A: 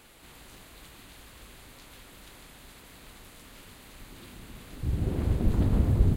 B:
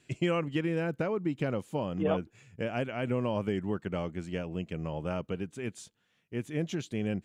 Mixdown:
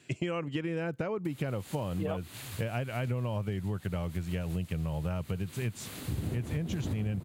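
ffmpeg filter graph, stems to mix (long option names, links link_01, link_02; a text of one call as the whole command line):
ffmpeg -i stem1.wav -i stem2.wav -filter_complex "[0:a]highshelf=frequency=3000:gain=7,adelay=1250,volume=3dB[link_01];[1:a]acontrast=23,asubboost=boost=10:cutoff=95,volume=0.5dB,asplit=2[link_02][link_03];[link_03]apad=whole_len=326840[link_04];[link_01][link_04]sidechaincompress=threshold=-28dB:ratio=8:attack=22:release=267[link_05];[link_05][link_02]amix=inputs=2:normalize=0,highpass=frequency=78:width=0.5412,highpass=frequency=78:width=1.3066,acompressor=threshold=-30dB:ratio=6" out.wav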